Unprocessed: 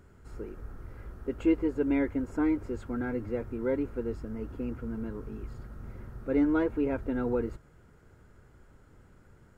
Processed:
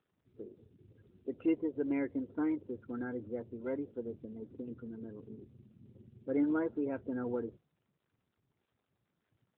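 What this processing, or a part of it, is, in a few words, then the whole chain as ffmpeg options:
mobile call with aggressive noise cancelling: -af "highpass=120,afftdn=nr=29:nf=-43,volume=0.562" -ar 8000 -c:a libopencore_amrnb -b:a 12200

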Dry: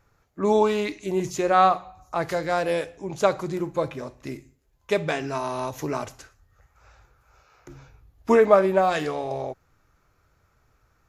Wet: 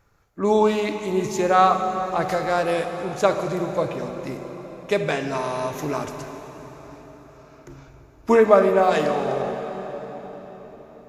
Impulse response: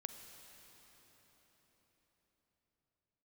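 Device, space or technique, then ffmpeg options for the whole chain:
cathedral: -filter_complex "[1:a]atrim=start_sample=2205[s0];[0:a][s0]afir=irnorm=-1:irlink=0,volume=1.88"

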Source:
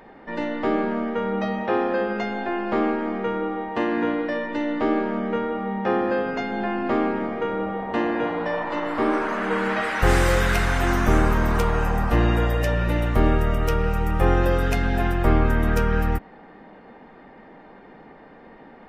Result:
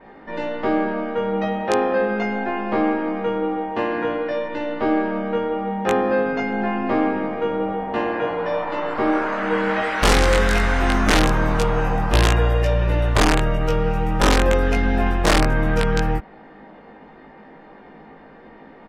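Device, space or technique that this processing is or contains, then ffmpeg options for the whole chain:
overflowing digital effects unit: -filter_complex "[0:a]adynamicequalizer=threshold=0.00224:dfrequency=8100:dqfactor=0.98:tfrequency=8100:tqfactor=0.98:attack=5:release=100:ratio=0.375:range=2:mode=cutabove:tftype=bell,aeval=exprs='(mod(3.16*val(0)+1,2)-1)/3.16':c=same,lowpass=8500,asplit=2[s0][s1];[s1]adelay=19,volume=0.794[s2];[s0][s2]amix=inputs=2:normalize=0"

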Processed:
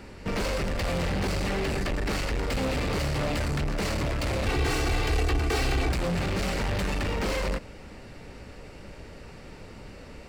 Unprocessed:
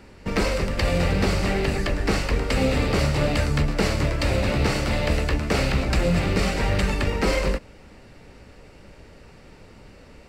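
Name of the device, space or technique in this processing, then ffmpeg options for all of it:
saturation between pre-emphasis and de-emphasis: -filter_complex "[0:a]highshelf=f=4000:g=7.5,asoftclip=type=tanh:threshold=0.0398,highshelf=f=4000:g=-7.5,asettb=1/sr,asplit=3[s0][s1][s2];[s0]atrim=end=4.464[s3];[s1]atrim=start=4.46:end=5.92,asetpts=PTS-STARTPTS,afade=t=in:d=0.004:c=qsin,afade=t=out:st=1.456:d=0.004:c=qsin,aecho=1:1:2.6:0.87,atrim=end_sample=64386[s4];[s2]atrim=start=5.916[s5];[s3][s4]acrossfade=d=0.004:c1=hsin:c2=qsin[s6];[s6][s5]acrossfade=d=0.004:c1=qsin:c2=hsin,volume=1.41"

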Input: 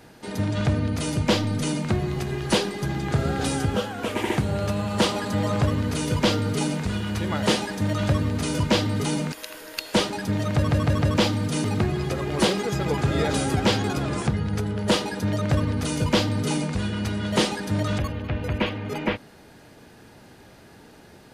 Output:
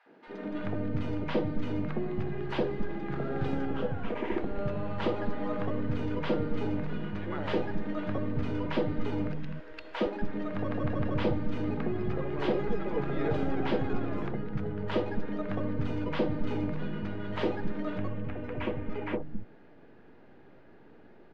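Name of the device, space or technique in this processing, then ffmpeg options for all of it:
crystal radio: -filter_complex "[0:a]highpass=290,lowpass=2600,aeval=exprs='if(lt(val(0),0),0.708*val(0),val(0))':c=same,aemphasis=mode=reproduction:type=riaa,acrossover=split=200|840[s0][s1][s2];[s1]adelay=60[s3];[s0]adelay=270[s4];[s4][s3][s2]amix=inputs=3:normalize=0,volume=0.562"

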